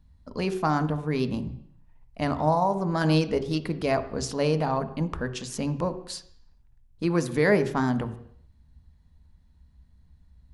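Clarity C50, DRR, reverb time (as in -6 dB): 13.0 dB, 10.0 dB, 0.65 s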